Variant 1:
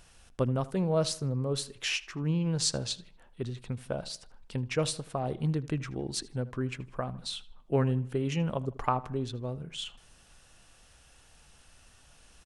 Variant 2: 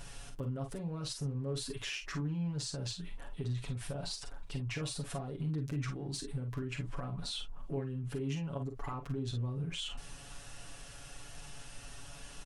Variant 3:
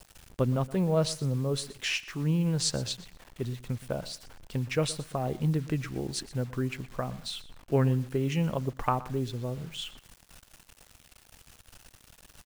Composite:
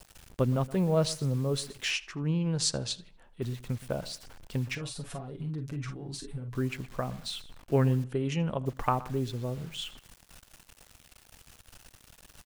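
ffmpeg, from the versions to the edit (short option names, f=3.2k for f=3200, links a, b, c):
-filter_complex "[0:a]asplit=2[a][b];[2:a]asplit=4[c][d][e][f];[c]atrim=end=1.912[g];[a]atrim=start=1.908:end=3.422[h];[d]atrim=start=3.418:end=4.752[i];[1:a]atrim=start=4.748:end=6.552[j];[e]atrim=start=6.548:end=8.042[k];[b]atrim=start=8.038:end=8.662[l];[f]atrim=start=8.658[m];[g][h]acrossfade=d=0.004:c1=hsin:c2=hsin[n];[n][i]acrossfade=d=0.004:c1=hsin:c2=hsin[o];[o][j]acrossfade=d=0.004:c1=hsin:c2=hsin[p];[p][k]acrossfade=d=0.004:c1=hsin:c2=hsin[q];[q][l]acrossfade=d=0.004:c1=hsin:c2=hsin[r];[r][m]acrossfade=d=0.004:c1=hsin:c2=hsin"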